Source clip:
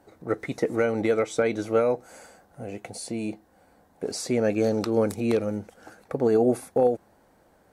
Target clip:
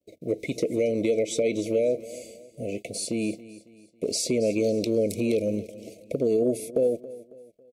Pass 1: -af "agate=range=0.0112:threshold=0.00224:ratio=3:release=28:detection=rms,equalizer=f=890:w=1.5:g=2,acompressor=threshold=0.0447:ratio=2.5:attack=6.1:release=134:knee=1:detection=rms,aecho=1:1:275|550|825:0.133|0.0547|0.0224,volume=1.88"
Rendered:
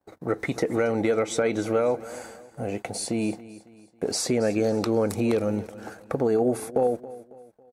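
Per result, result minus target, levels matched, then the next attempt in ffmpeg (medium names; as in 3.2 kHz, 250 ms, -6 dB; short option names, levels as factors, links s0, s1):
1 kHz band +14.5 dB; 125 Hz band +3.0 dB
-af "agate=range=0.0112:threshold=0.00224:ratio=3:release=28:detection=rms,asuperstop=centerf=1200:order=20:qfactor=0.8,equalizer=f=890:w=1.5:g=2,acompressor=threshold=0.0447:ratio=2.5:attack=6.1:release=134:knee=1:detection=rms,aecho=1:1:275|550|825:0.133|0.0547|0.0224,volume=1.88"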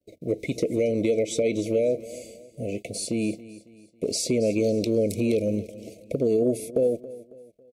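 125 Hz band +3.0 dB
-af "agate=range=0.0112:threshold=0.00224:ratio=3:release=28:detection=rms,asuperstop=centerf=1200:order=20:qfactor=0.8,equalizer=f=890:w=1.5:g=2,acompressor=threshold=0.0447:ratio=2.5:attack=6.1:release=134:knee=1:detection=rms,lowshelf=f=140:g=-7,aecho=1:1:275|550|825:0.133|0.0547|0.0224,volume=1.88"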